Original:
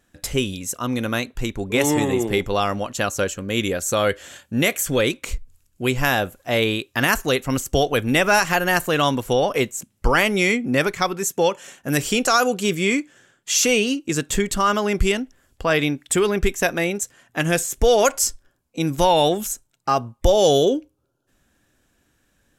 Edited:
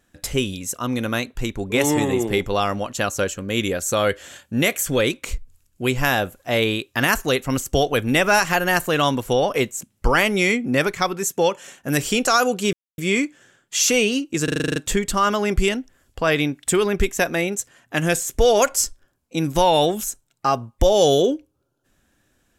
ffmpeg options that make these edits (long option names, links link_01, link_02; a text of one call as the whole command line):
ffmpeg -i in.wav -filter_complex "[0:a]asplit=10[link_01][link_02][link_03][link_04][link_05][link_06][link_07][link_08][link_09][link_10];[link_01]atrim=end=12.73,asetpts=PTS-STARTPTS,afade=type=out:start_time=12.726:duration=0.004:curve=hsin,apad=pad_dur=0.25[link_11];[link_02]atrim=start=12.73:end=14.232,asetpts=PTS-STARTPTS,afade=type=in:duration=0.004:curve=hsin[link_12];[link_03]atrim=start=14.188:end=14.232[link_13];[link_04]atrim=start=14.188:end=14.232[link_14];[link_05]atrim=start=14.188:end=14.232[link_15];[link_06]atrim=start=14.188:end=14.232[link_16];[link_07]atrim=start=14.188:end=14.232[link_17];[link_08]atrim=start=14.188:end=14.232[link_18];[link_09]atrim=start=14.188:end=14.232[link_19];[link_10]atrim=start=14.188[link_20];[link_11][link_12]concat=n=2:v=0:a=1[link_21];[link_21][link_13]acrossfade=duration=0.004:curve1=hsin:curve2=hsin[link_22];[link_22][link_14]acrossfade=duration=0.004:curve1=hsin:curve2=hsin[link_23];[link_23][link_15]acrossfade=duration=0.004:curve1=hsin:curve2=hsin[link_24];[link_24][link_16]acrossfade=duration=0.004:curve1=hsin:curve2=hsin[link_25];[link_25][link_17]acrossfade=duration=0.004:curve1=hsin:curve2=hsin[link_26];[link_26][link_18]acrossfade=duration=0.004:curve1=hsin:curve2=hsin[link_27];[link_27][link_19]acrossfade=duration=0.004:curve1=hsin:curve2=hsin[link_28];[link_28][link_20]acrossfade=duration=0.004:curve1=hsin:curve2=hsin" out.wav